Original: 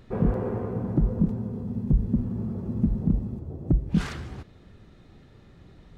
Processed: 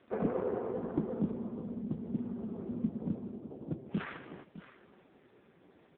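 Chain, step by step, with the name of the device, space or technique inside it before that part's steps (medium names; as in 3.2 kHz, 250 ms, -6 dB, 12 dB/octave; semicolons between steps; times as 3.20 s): satellite phone (band-pass 310–3100 Hz; delay 609 ms -15 dB; AMR-NB 4.75 kbps 8 kHz)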